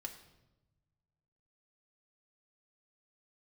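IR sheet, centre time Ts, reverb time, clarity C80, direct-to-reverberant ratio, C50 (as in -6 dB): 15 ms, 1.0 s, 12.0 dB, 2.0 dB, 10.0 dB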